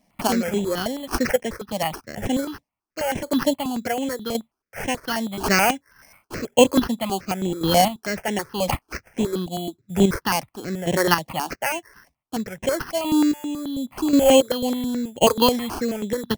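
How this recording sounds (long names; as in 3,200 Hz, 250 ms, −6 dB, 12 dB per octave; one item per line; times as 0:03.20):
chopped level 0.92 Hz, depth 60%, duty 25%
aliases and images of a low sample rate 3,700 Hz, jitter 0%
notches that jump at a steady rate 9.3 Hz 380–4,600 Hz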